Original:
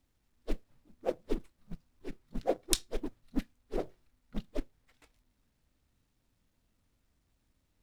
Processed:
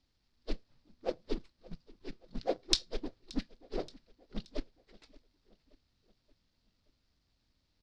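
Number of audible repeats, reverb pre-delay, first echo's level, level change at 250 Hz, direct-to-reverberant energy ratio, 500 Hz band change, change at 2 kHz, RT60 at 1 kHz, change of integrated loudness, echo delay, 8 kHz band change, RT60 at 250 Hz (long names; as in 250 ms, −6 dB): 3, no reverb audible, −22.5 dB, −2.5 dB, no reverb audible, −2.5 dB, −0.5 dB, no reverb audible, −0.5 dB, 576 ms, −5.5 dB, no reverb audible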